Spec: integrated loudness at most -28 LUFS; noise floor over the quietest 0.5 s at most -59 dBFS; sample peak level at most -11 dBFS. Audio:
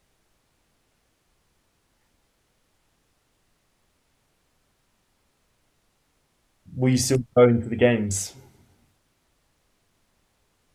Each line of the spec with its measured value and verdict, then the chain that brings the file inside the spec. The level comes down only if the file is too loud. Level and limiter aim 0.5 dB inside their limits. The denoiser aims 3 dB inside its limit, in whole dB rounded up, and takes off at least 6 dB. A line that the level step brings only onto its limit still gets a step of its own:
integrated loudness -21.5 LUFS: fail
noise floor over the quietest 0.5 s -69 dBFS: pass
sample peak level -4.0 dBFS: fail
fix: trim -7 dB; peak limiter -11.5 dBFS

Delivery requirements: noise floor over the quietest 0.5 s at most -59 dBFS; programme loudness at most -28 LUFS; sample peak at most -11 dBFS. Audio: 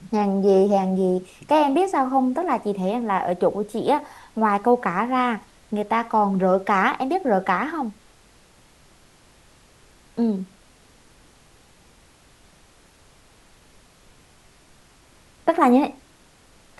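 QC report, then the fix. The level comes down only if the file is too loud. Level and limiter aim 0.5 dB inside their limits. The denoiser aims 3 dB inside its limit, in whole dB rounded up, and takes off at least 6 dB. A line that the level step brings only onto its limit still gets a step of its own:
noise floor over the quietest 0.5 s -54 dBFS: fail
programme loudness -21.5 LUFS: fail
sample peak -4.0 dBFS: fail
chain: trim -7 dB; peak limiter -11.5 dBFS

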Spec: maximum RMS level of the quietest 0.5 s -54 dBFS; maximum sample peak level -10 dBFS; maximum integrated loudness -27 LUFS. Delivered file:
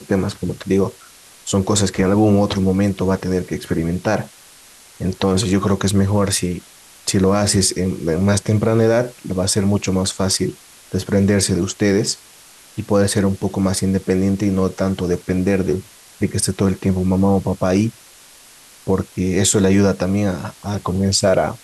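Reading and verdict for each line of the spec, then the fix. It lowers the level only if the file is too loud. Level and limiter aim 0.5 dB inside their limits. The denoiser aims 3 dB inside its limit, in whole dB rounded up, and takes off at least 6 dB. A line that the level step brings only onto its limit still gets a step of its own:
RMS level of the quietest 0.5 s -45 dBFS: fail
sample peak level -4.5 dBFS: fail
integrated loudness -18.5 LUFS: fail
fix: noise reduction 6 dB, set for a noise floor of -45 dBFS; trim -9 dB

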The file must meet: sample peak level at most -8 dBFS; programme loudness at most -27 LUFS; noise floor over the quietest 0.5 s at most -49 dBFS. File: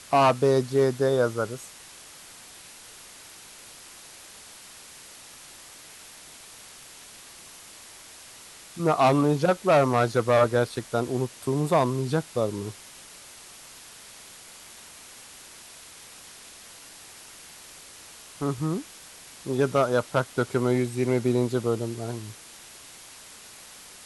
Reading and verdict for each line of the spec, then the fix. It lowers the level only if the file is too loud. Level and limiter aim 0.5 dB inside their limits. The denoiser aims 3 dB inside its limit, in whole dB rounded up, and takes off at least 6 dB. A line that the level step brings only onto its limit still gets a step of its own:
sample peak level -10.0 dBFS: pass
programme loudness -24.5 LUFS: fail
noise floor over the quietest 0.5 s -47 dBFS: fail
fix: trim -3 dB

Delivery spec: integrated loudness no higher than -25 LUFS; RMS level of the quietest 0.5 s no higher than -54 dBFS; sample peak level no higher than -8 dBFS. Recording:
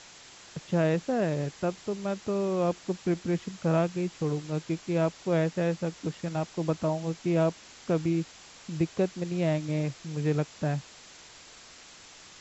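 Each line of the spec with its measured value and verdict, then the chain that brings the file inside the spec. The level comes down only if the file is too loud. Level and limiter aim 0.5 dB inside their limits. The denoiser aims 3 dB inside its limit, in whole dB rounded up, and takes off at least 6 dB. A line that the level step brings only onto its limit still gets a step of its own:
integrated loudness -30.0 LUFS: pass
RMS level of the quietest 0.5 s -51 dBFS: fail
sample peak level -15.0 dBFS: pass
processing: noise reduction 6 dB, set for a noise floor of -51 dBFS

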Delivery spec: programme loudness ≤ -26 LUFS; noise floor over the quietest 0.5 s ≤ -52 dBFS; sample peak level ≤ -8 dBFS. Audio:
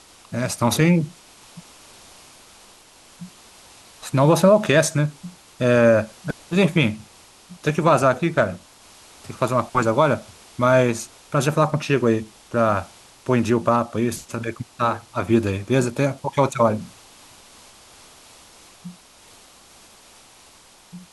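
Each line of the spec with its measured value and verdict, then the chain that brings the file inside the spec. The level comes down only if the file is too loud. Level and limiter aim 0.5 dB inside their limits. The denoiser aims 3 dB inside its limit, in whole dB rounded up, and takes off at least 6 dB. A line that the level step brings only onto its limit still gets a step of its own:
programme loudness -20.5 LUFS: fail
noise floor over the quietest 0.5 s -50 dBFS: fail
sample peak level -4.5 dBFS: fail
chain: trim -6 dB

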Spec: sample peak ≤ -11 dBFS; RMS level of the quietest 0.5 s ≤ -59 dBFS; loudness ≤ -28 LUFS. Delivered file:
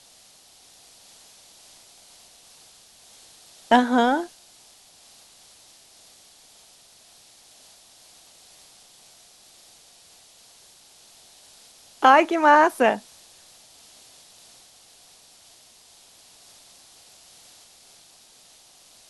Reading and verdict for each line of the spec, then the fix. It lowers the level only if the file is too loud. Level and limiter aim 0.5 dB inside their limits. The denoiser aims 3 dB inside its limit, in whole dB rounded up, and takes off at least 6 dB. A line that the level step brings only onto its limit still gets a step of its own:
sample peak -2.0 dBFS: fail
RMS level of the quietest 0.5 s -53 dBFS: fail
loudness -18.5 LUFS: fail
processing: trim -10 dB

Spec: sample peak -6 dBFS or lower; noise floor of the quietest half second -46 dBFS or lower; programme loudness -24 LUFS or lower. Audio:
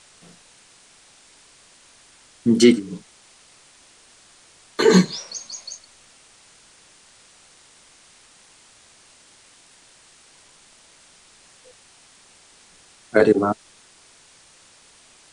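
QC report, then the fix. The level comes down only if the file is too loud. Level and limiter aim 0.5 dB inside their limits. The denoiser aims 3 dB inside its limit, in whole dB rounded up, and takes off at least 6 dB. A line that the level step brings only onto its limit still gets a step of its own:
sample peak -2.5 dBFS: fail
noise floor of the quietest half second -52 dBFS: pass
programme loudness -19.5 LUFS: fail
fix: trim -5 dB

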